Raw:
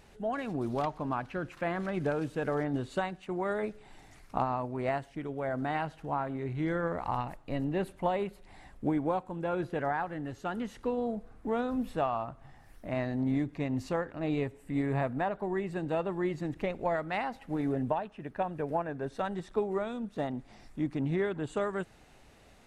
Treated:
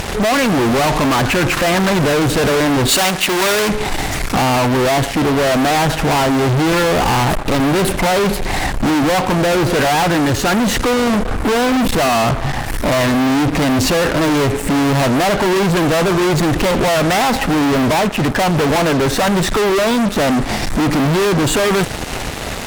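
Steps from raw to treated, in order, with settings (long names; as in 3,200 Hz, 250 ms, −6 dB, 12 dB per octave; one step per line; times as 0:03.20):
fuzz pedal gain 55 dB, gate −59 dBFS
0:02.88–0:03.69: spectral tilt +2 dB per octave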